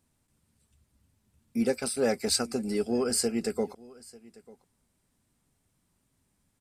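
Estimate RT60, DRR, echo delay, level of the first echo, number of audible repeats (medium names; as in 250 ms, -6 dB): no reverb, no reverb, 894 ms, -22.5 dB, 1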